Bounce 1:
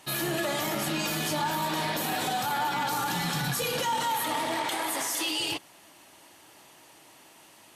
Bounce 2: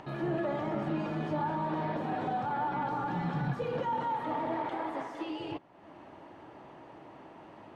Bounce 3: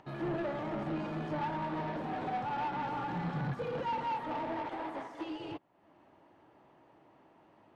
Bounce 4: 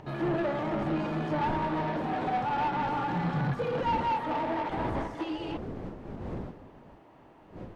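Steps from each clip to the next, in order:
Bessel low-pass filter 840 Hz, order 2; upward compression, threshold −40 dBFS
in parallel at 0 dB: brickwall limiter −34 dBFS, peak gain reduction 11 dB; on the sum: soft clipping −29 dBFS, distortion −13 dB; expander for the loud parts 2.5 to 1, over −43 dBFS
wind on the microphone 360 Hz −48 dBFS; level +6 dB

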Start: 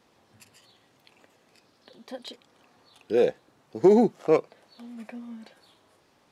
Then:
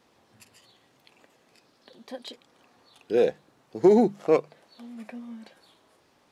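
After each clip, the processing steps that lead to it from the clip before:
mains-hum notches 50/100/150/200 Hz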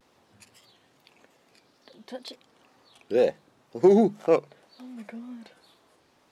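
tape wow and flutter 110 cents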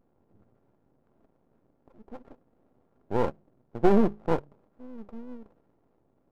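samples sorted by size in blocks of 32 samples
Gaussian smoothing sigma 13 samples
half-wave rectification
level +5 dB

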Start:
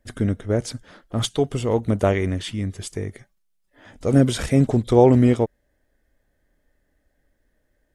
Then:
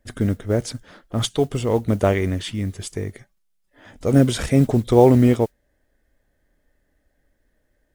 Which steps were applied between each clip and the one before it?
noise that follows the level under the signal 32 dB
level +1 dB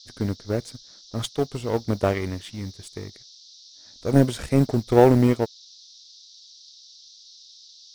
power curve on the samples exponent 1.4
noise in a band 3,600–5,900 Hz −49 dBFS

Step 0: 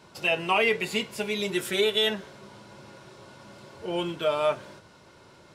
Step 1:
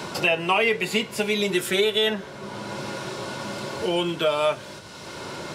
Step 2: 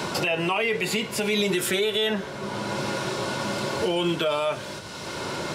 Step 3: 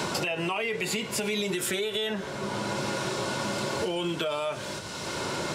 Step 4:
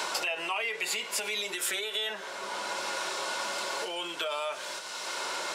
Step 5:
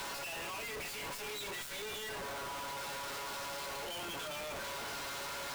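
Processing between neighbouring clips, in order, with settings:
multiband upward and downward compressor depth 70%; level +4 dB
brickwall limiter −19.5 dBFS, peak gain reduction 10.5 dB; level +4 dB
parametric band 7,500 Hz +3.5 dB 0.68 octaves; downward compressor, threshold −26 dBFS, peak gain reduction 6.5 dB; every ending faded ahead of time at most 170 dB per second
high-pass filter 700 Hz 12 dB per octave
stylus tracing distortion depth 0.071 ms; tuned comb filter 140 Hz, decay 0.18 s, harmonics all, mix 90%; comparator with hysteresis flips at −50 dBFS

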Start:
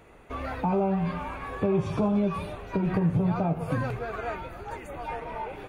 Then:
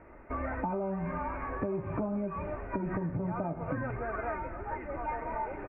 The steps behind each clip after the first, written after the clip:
Butterworth low-pass 2,200 Hz 48 dB per octave
comb filter 3.3 ms, depth 40%
downward compressor 6 to 1, threshold −30 dBFS, peak gain reduction 9.5 dB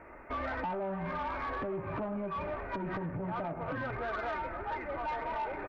low-shelf EQ 470 Hz −9 dB
in parallel at 0 dB: brickwall limiter −32.5 dBFS, peak gain reduction 7.5 dB
on the sum: soft clipping −29.5 dBFS, distortion −16 dB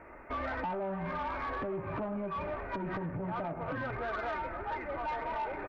no processing that can be heard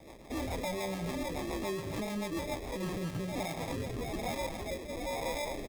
decimation without filtering 30×
rotating-speaker cabinet horn 7 Hz, later 1.1 Hz, at 0:02.53
level +2 dB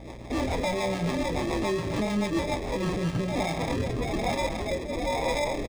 mains hum 60 Hz, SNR 15 dB
double-tracking delay 24 ms −11 dB
linearly interpolated sample-rate reduction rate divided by 3×
level +8 dB

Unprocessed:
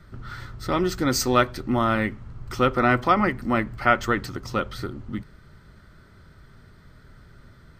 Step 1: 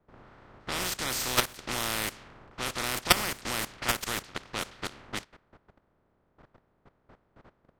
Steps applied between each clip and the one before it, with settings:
compressing power law on the bin magnitudes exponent 0.21
output level in coarse steps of 16 dB
low-pass that shuts in the quiet parts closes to 720 Hz, open at −28 dBFS
level +1 dB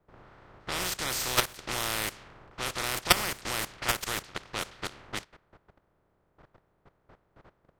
parametric band 240 Hz −6.5 dB 0.32 octaves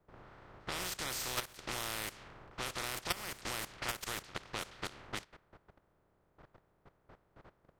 downward compressor 3 to 1, threshold −35 dBFS, peak gain reduction 15 dB
level −2 dB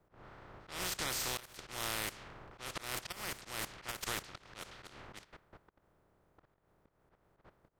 volume swells 167 ms
level +2 dB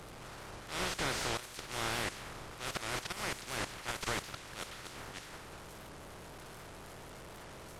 linear delta modulator 64 kbit/s, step −48.5 dBFS
wow of a warped record 78 rpm, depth 160 cents
level +5 dB

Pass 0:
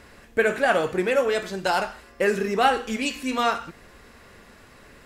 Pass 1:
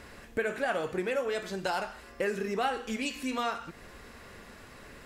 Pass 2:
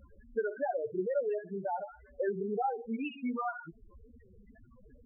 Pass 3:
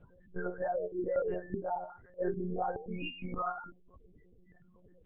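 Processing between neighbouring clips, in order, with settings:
downward compressor 2 to 1, threshold −35 dBFS, peak gain reduction 11.5 dB
spectral peaks only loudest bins 4; tape wow and flutter 75 cents
every partial snapped to a pitch grid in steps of 2 semitones; one-pitch LPC vocoder at 8 kHz 180 Hz

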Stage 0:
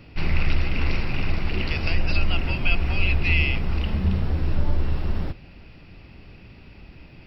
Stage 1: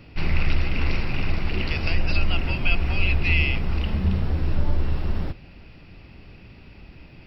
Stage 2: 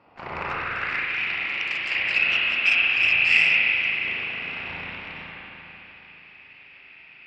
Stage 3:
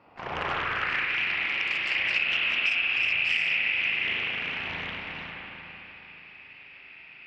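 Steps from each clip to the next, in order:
no processing that can be heard
harmonic generator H 7 −10 dB, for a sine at −6 dBFS; spring reverb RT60 3.7 s, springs 37/50 ms, chirp 65 ms, DRR −6 dB; band-pass filter sweep 920 Hz → 2,300 Hz, 0:00.36–0:01.21; level +1.5 dB
downward compressor 10 to 1, threshold −22 dBFS, peak gain reduction 9.5 dB; highs frequency-modulated by the lows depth 0.42 ms

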